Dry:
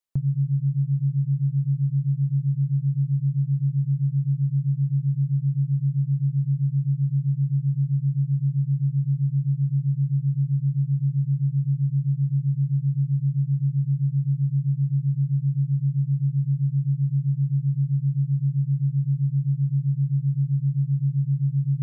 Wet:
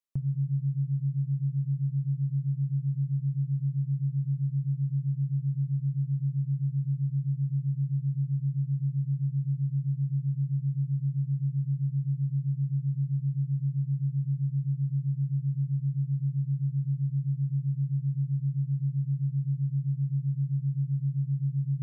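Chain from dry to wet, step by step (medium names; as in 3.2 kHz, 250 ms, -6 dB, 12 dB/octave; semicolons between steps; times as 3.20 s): plate-style reverb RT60 2.3 s, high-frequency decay 0.85×, DRR 15 dB; trim -6 dB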